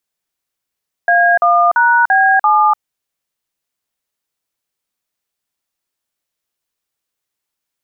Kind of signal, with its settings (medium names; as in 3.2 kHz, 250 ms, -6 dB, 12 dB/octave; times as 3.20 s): DTMF "A1#B7", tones 295 ms, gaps 45 ms, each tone -10.5 dBFS